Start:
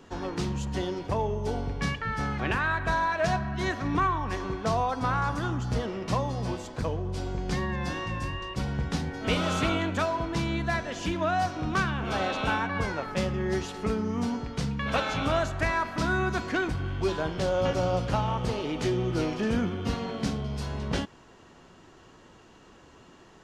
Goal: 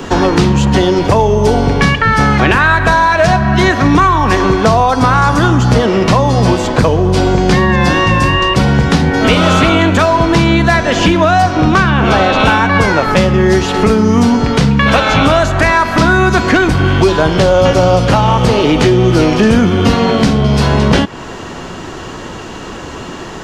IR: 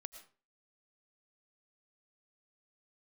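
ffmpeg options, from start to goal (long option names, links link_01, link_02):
-filter_complex "[0:a]asettb=1/sr,asplit=3[link_01][link_02][link_03];[link_01]atrim=end=11.424[link_04];[link_02]atrim=start=11.42:end=12.4,asetpts=PTS-STARTPTS,afade=type=in:duration=0.004:curve=qsin,afade=type=out:start_time=0.976:duration=0.004:curve=qsin,highshelf=frequency=6000:gain=-10.5[link_05];[link_03]atrim=start=12.396[link_06];[link_04][link_05]acrossfade=duration=0.004:curve1=hsin:curve2=qsin[link_07];[link_07][link_06]acrossfade=duration=0.004:curve1=qsin:curve2=hsin,acrossover=split=120|4200[link_08][link_09][link_10];[link_08]acompressor=threshold=-46dB:ratio=4[link_11];[link_09]acompressor=threshold=-36dB:ratio=4[link_12];[link_10]acompressor=threshold=-58dB:ratio=4[link_13];[link_11][link_12][link_13]amix=inputs=3:normalize=0,apsyclip=29dB,volume=-1.5dB"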